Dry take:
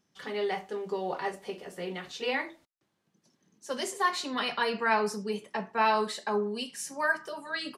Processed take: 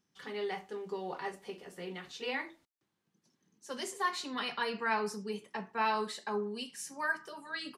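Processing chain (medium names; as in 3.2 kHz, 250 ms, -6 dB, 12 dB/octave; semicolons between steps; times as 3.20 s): peaking EQ 610 Hz -5.5 dB 0.43 oct; trim -5 dB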